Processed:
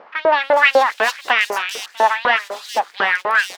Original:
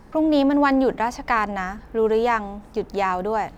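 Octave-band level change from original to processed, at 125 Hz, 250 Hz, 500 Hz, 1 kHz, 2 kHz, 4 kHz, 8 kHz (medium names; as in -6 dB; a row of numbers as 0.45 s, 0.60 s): under -15 dB, -17.0 dB, +2.0 dB, +5.0 dB, +12.5 dB, +13.5 dB, no reading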